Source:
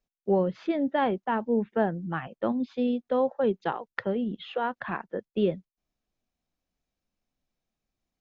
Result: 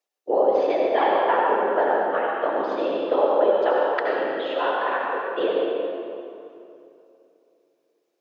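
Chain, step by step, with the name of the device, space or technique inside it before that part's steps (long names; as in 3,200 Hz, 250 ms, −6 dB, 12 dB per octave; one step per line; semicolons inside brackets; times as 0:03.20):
whispering ghost (random phases in short frames; high-pass filter 410 Hz 24 dB per octave; convolution reverb RT60 2.8 s, pre-delay 65 ms, DRR −3 dB)
level +4 dB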